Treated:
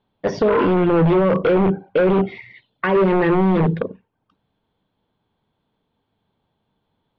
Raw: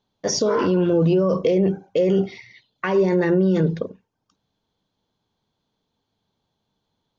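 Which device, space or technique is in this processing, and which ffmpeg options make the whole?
synthesiser wavefolder: -af "aeval=exprs='0.178*(abs(mod(val(0)/0.178+3,4)-2)-1)':channel_layout=same,lowpass=frequency=3100:width=0.5412,lowpass=frequency=3100:width=1.3066,volume=4.5dB"

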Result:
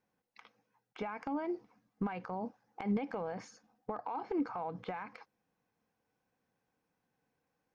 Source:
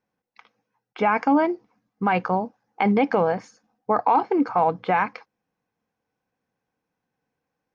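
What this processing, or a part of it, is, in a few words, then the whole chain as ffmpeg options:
de-esser from a sidechain: -filter_complex "[0:a]asplit=2[link_01][link_02];[link_02]highpass=frequency=4600:poles=1,apad=whole_len=341393[link_03];[link_01][link_03]sidechaincompress=threshold=-52dB:ratio=4:attack=1.7:release=64,volume=-1.5dB"

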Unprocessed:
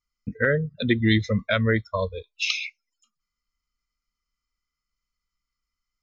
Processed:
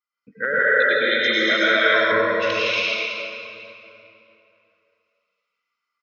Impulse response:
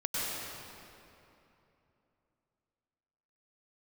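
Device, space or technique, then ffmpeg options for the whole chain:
station announcement: -filter_complex "[0:a]highpass=460,lowpass=3600,equalizer=frequency=1400:width_type=o:width=0.34:gain=5,aecho=1:1:163.3|236.2:0.708|0.891[link_01];[1:a]atrim=start_sample=2205[link_02];[link_01][link_02]afir=irnorm=-1:irlink=0,asettb=1/sr,asplit=3[link_03][link_04][link_05];[link_03]atrim=end=0.594[link_06];[link_04]atrim=start=0.59:end=2.12,asetpts=PTS-STARTPTS,afade=type=in:duration=0.004:curve=qsin,afade=type=out:start_time=1.526:duration=0.004:curve=qsin,bass=frequency=250:gain=-14,treble=frequency=4000:gain=12[link_07];[link_05]atrim=start=2.116[link_08];[link_06][link_07]acrossfade=duration=0.004:curve1=hsin:curve2=qsin[link_09];[link_09][link_08]acrossfade=duration=0.004:curve1=qsin:curve2=hsin,volume=-2dB"

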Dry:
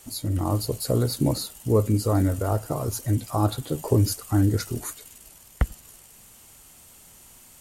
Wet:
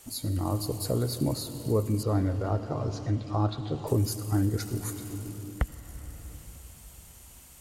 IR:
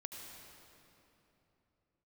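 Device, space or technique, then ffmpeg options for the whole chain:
ducked reverb: -filter_complex "[0:a]asettb=1/sr,asplit=3[link_01][link_02][link_03];[link_01]atrim=end=2.034[link_04];[link_02]atrim=start=2.03:end=3.87,asetpts=PTS-STARTPTS,afade=type=in:duration=0.004:curve=qsin,afade=type=out:start_time=1.836:duration=0.004:curve=qsin,lowpass=frequency=5100:width=0.5412,lowpass=frequency=5100:width=1.3066[link_05];[link_03]atrim=start=3.866[link_06];[link_04][link_05]acrossfade=duration=0.004:curve1=hsin:curve2=qsin[link_07];[link_07][link_06]acrossfade=duration=0.004:curve1=qsin:curve2=hsin,asplit=3[link_08][link_09][link_10];[1:a]atrim=start_sample=2205[link_11];[link_09][link_11]afir=irnorm=-1:irlink=0[link_12];[link_10]apad=whole_len=335316[link_13];[link_12][link_13]sidechaincompress=threshold=-24dB:ratio=8:attack=16:release=1010,volume=4dB[link_14];[link_08][link_14]amix=inputs=2:normalize=0,volume=-8dB"

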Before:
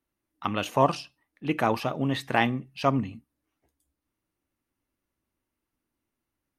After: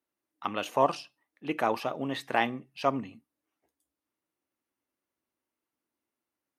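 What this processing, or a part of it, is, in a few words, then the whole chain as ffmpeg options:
filter by subtraction: -filter_complex "[0:a]asplit=2[link_01][link_02];[link_02]lowpass=500,volume=-1[link_03];[link_01][link_03]amix=inputs=2:normalize=0,volume=-4dB"

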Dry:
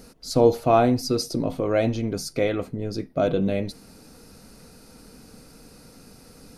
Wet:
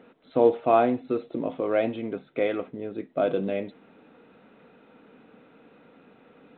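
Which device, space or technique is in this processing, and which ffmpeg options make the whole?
telephone: -af "highpass=260,lowpass=3400,volume=-1.5dB" -ar 8000 -c:a pcm_mulaw

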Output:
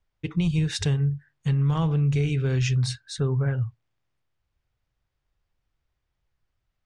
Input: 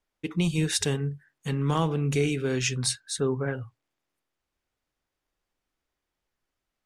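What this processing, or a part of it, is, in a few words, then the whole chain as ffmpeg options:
jukebox: -af "lowpass=5500,lowshelf=frequency=170:width_type=q:width=1.5:gain=11,acompressor=threshold=-20dB:ratio=4"

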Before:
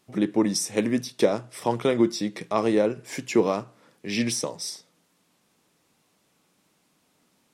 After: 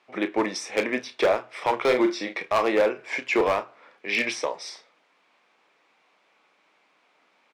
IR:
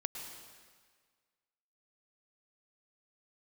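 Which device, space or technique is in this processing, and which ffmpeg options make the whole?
megaphone: -filter_complex "[0:a]highpass=600,lowpass=2700,equalizer=frequency=2300:width_type=o:width=0.23:gain=6,asoftclip=type=hard:threshold=-23.5dB,asplit=2[link_01][link_02];[link_02]adelay=32,volume=-11dB[link_03];[link_01][link_03]amix=inputs=2:normalize=0,asettb=1/sr,asplit=3[link_04][link_05][link_06];[link_04]atrim=end=1.804[link_07];[link_05]atrim=start=1.8:end=2.34,asetpts=PTS-STARTPTS,afade=type=in:duration=0.004:curve=qsin,afade=type=out:start_time=0.536:duration=0.004:curve=qsin,asplit=2[link_08][link_09];[link_09]adelay=40,volume=-7.5dB[link_10];[link_08][link_10]amix=inputs=2:normalize=0,atrim=end_sample=23814[link_11];[link_06]atrim=start=2.336[link_12];[link_07][link_11]acrossfade=duration=0.004:curve1=hsin:curve2=qsin[link_13];[link_13][link_12]acrossfade=duration=0.004:curve1=qsin:curve2=hsin,volume=7.5dB"

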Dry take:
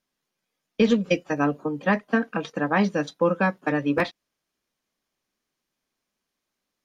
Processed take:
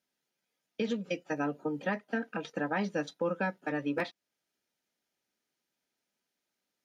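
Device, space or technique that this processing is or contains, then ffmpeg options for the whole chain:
PA system with an anti-feedback notch: -af "highpass=frequency=160:poles=1,asuperstop=centerf=1100:order=8:qfactor=6.5,alimiter=limit=-19dB:level=0:latency=1:release=392,volume=-3dB"

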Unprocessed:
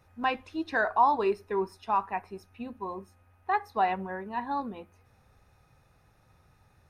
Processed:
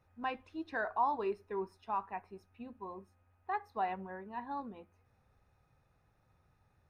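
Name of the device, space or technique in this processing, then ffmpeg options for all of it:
behind a face mask: -af "highshelf=frequency=3500:gain=-7,volume=-8.5dB"

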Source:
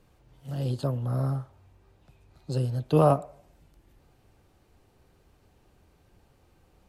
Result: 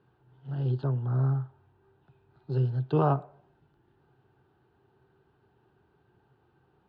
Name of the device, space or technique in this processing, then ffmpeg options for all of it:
guitar cabinet: -filter_complex "[0:a]asettb=1/sr,asplit=3[link_01][link_02][link_03];[link_01]atrim=end=2.554[link_04];[link_02]atrim=start=2.55:end=3.24,asetpts=PTS-STARTPTS,afade=type=in:duration=0.004:curve=qsin,afade=type=out:start_time=0.686:duration=0.004:curve=qsin,aemphasis=mode=production:type=cd[link_05];[link_03]atrim=start=3.236[link_06];[link_04][link_05]acrossfade=duration=0.004:curve1=hsin:curve2=qsin[link_07];[link_07][link_06]acrossfade=duration=0.004:curve1=qsin:curve2=hsin,highpass=100,equalizer=frequency=130:width_type=q:width=4:gain=10,equalizer=frequency=390:width_type=q:width=4:gain=10,equalizer=frequency=550:width_type=q:width=4:gain=-7,equalizer=frequency=870:width_type=q:width=4:gain=7,equalizer=frequency=1500:width_type=q:width=4:gain=9,equalizer=frequency=2200:width_type=q:width=4:gain=-9,lowpass=frequency=3600:width=0.5412,lowpass=frequency=3600:width=1.3066,volume=-6dB"

